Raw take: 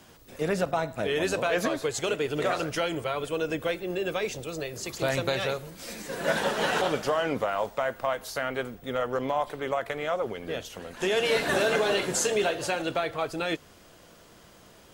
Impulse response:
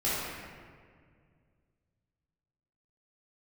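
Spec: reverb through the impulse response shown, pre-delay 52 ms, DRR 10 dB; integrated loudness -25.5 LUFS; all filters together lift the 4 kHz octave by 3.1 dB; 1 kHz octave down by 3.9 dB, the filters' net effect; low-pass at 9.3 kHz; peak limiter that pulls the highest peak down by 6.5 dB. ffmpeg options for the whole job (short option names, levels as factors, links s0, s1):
-filter_complex "[0:a]lowpass=9300,equalizer=f=1000:t=o:g=-6,equalizer=f=4000:t=o:g=4.5,alimiter=limit=0.1:level=0:latency=1,asplit=2[s0][s1];[1:a]atrim=start_sample=2205,adelay=52[s2];[s1][s2]afir=irnorm=-1:irlink=0,volume=0.0944[s3];[s0][s3]amix=inputs=2:normalize=0,volume=1.78"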